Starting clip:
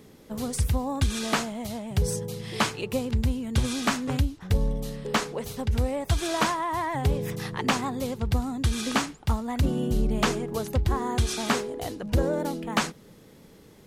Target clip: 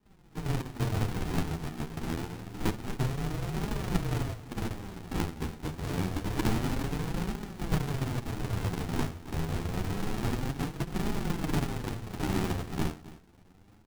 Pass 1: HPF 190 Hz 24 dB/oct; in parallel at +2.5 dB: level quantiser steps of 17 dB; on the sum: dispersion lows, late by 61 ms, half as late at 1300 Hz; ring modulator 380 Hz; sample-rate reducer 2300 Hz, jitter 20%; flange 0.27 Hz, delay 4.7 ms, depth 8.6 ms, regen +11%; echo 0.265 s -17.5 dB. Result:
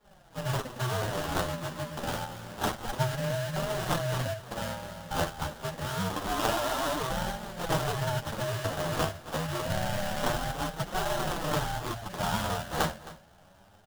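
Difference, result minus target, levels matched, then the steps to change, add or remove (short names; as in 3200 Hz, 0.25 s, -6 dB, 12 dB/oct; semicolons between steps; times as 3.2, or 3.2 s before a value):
sample-rate reducer: distortion -8 dB
change: sample-rate reducer 580 Hz, jitter 20%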